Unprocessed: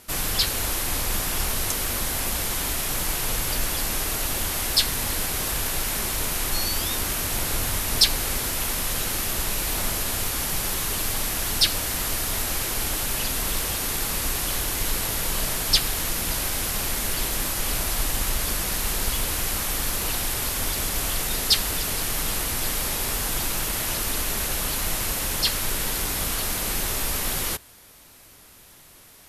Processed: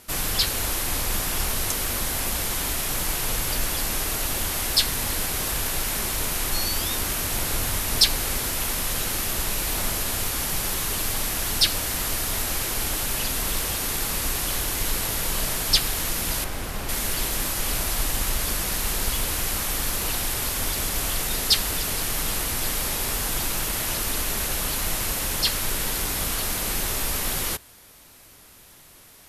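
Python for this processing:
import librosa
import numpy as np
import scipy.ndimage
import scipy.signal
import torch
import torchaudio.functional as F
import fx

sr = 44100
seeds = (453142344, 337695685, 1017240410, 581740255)

y = fx.high_shelf(x, sr, hz=2800.0, db=-11.0, at=(16.44, 16.89))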